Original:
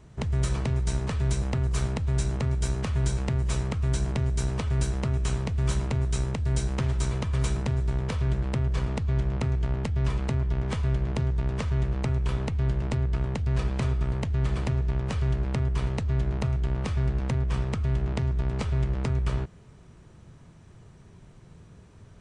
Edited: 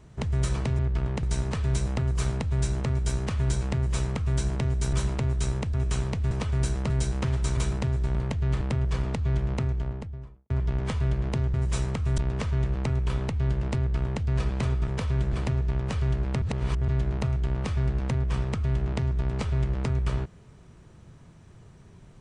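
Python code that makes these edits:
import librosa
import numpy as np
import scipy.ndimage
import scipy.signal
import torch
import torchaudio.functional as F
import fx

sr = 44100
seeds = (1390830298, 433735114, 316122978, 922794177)

y = fx.studio_fade_out(x, sr, start_s=9.3, length_s=1.03)
y = fx.edit(y, sr, fx.duplicate(start_s=3.31, length_s=0.64, to_s=11.37),
    fx.swap(start_s=4.49, length_s=0.59, other_s=5.65, other_length_s=0.81),
    fx.cut(start_s=7.13, length_s=0.28),
    fx.swap(start_s=7.99, length_s=0.45, other_s=14.07, other_length_s=0.46),
    fx.duplicate(start_s=12.97, length_s=0.44, to_s=0.79),
    fx.reverse_span(start_s=15.62, length_s=0.46), tone=tone)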